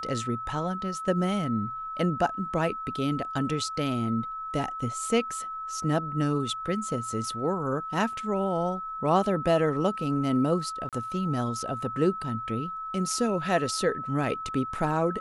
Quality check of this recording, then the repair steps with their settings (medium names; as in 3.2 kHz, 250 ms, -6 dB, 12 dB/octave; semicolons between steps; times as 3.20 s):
whine 1.3 kHz -33 dBFS
10.89–10.93 s: dropout 37 ms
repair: band-stop 1.3 kHz, Q 30; interpolate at 10.89 s, 37 ms